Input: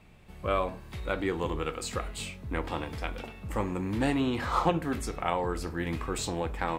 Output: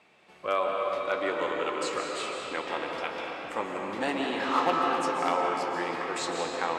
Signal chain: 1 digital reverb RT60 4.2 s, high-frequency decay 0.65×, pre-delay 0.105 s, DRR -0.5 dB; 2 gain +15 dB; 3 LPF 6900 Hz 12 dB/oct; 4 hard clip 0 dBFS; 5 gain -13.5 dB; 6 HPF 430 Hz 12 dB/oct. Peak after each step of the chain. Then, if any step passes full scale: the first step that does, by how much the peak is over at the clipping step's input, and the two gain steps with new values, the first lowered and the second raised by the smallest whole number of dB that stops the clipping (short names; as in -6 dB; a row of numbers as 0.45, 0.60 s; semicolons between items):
-10.5, +4.5, +4.5, 0.0, -13.5, -12.0 dBFS; step 2, 4.5 dB; step 2 +10 dB, step 5 -8.5 dB